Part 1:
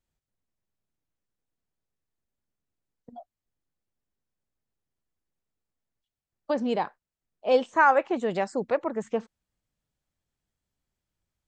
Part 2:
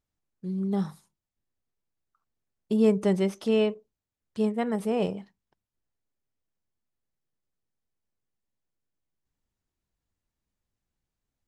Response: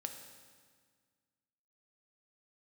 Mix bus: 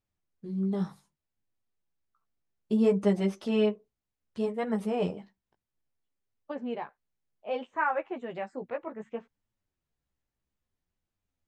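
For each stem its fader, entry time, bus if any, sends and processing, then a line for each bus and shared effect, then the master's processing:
-6.5 dB, 0.00 s, no send, resonant high shelf 3700 Hz -10.5 dB, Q 1.5
+1.0 dB, 0.00 s, no send, high shelf 8000 Hz -8.5 dB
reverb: off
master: flange 0.63 Hz, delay 8.8 ms, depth 8.3 ms, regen -4%

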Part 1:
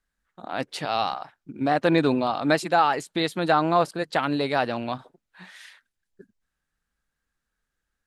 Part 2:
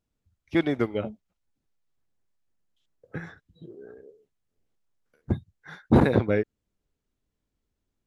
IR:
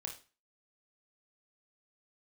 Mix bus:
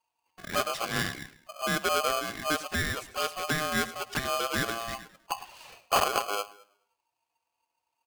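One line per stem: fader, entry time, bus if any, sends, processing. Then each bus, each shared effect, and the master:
-4.0 dB, 0.00 s, no send, echo send -15 dB, notch 1100 Hz, Q 16
-9.0 dB, 0.00 s, no send, echo send -14.5 dB, dry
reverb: off
echo: feedback echo 0.105 s, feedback 33%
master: vocal rider within 3 dB 0.5 s; envelope flanger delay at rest 5 ms, full sweep at -23 dBFS; polarity switched at an audio rate 920 Hz

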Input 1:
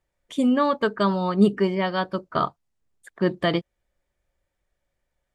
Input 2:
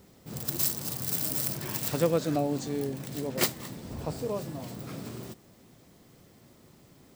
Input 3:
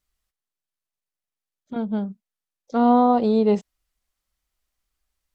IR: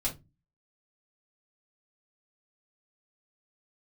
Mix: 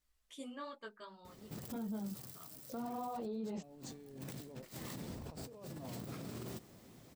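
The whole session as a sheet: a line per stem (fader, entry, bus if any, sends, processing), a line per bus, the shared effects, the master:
-14.0 dB, 0.00 s, bus A, no send, tilt +2.5 dB/oct; notches 50/100/150/200 Hz; auto duck -21 dB, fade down 1.55 s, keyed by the third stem
-9.0 dB, 1.25 s, no bus, no send, negative-ratio compressor -41 dBFS, ratio -1
0.0 dB, 0.00 s, bus A, no send, dry
bus A: 0.0 dB, chorus voices 4, 1.5 Hz, delay 16 ms, depth 3 ms; limiter -27 dBFS, peak gain reduction 19 dB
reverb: off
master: limiter -35 dBFS, peak gain reduction 12.5 dB

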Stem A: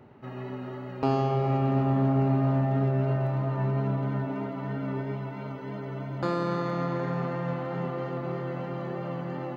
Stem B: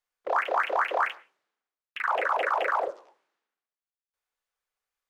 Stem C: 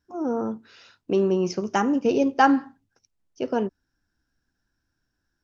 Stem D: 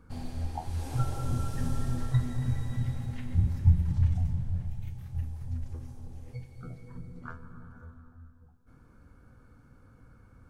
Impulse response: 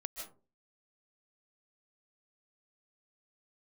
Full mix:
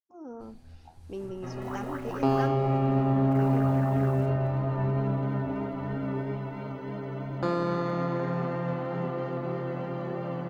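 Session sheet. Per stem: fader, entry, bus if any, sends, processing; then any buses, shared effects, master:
-1.5 dB, 1.20 s, no send, bell 380 Hz +2.5 dB 2.7 oct
-15.5 dB, 1.35 s, no send, LPF 1700 Hz; bit-crush 7-bit
-16.0 dB, 0.00 s, no send, expander -49 dBFS
-15.5 dB, 0.30 s, no send, compressor, threshold -27 dBFS, peak gain reduction 11.5 dB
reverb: off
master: dry

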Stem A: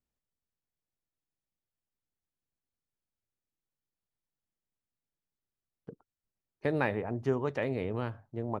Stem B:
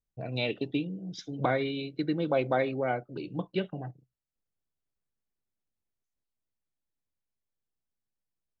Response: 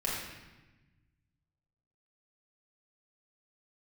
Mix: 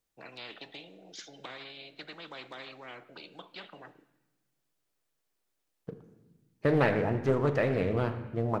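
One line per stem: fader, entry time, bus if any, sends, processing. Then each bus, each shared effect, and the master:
-0.5 dB, 0.00 s, send -11.5 dB, sample leveller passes 1
-13.5 dB, 0.00 s, send -19 dB, HPF 290 Hz 24 dB/oct; spectral compressor 4:1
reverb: on, RT60 1.1 s, pre-delay 6 ms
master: Doppler distortion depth 0.38 ms

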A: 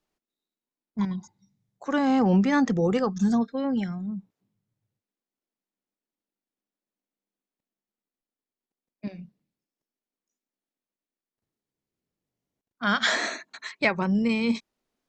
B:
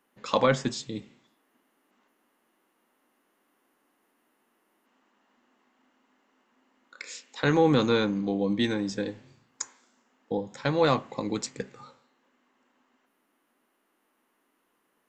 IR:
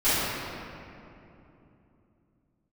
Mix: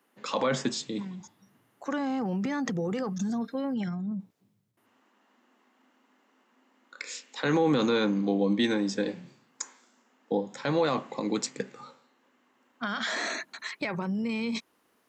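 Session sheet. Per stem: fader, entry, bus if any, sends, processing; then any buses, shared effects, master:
0.0 dB, 0.00 s, no send, limiter -17.5 dBFS, peak gain reduction 8 dB; compressor, threshold -28 dBFS, peak gain reduction 8 dB; transient shaper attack 0 dB, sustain +8 dB; auto duck -7 dB, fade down 0.60 s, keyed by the second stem
+2.0 dB, 0.00 s, muted 3.74–4.77, no send, HPF 150 Hz 24 dB/oct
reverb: off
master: HPF 89 Hz; limiter -16.5 dBFS, peak gain reduction 9 dB

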